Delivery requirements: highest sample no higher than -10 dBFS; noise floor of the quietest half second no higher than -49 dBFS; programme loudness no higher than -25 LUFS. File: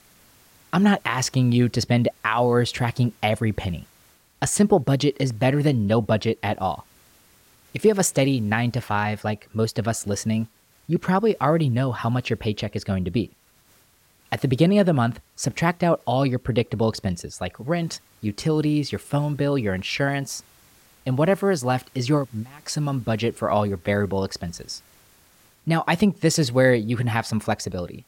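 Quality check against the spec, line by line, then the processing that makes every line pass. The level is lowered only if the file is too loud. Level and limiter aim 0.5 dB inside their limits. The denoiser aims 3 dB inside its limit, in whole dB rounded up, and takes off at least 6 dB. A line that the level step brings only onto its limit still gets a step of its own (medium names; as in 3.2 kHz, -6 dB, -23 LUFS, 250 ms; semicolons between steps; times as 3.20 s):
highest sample -7.0 dBFS: fail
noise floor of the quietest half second -59 dBFS: pass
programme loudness -23.0 LUFS: fail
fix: trim -2.5 dB; peak limiter -10.5 dBFS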